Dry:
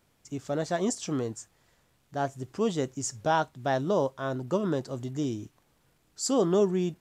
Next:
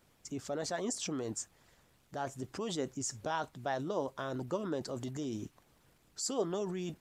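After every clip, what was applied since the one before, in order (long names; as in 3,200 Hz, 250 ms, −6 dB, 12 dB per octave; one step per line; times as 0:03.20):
harmonic and percussive parts rebalanced harmonic −9 dB
in parallel at 0 dB: compressor whose output falls as the input rises −41 dBFS, ratio −1
on the sum: level −6.5 dB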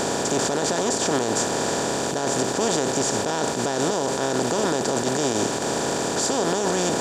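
compressor on every frequency bin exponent 0.2
brickwall limiter −19.5 dBFS, peak gain reduction 11 dB
level +7.5 dB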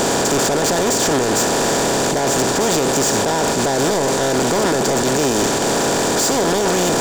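leveller curve on the samples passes 3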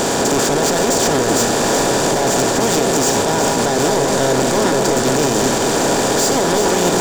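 delay that swaps between a low-pass and a high-pass 188 ms, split 1,200 Hz, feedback 68%, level −4 dB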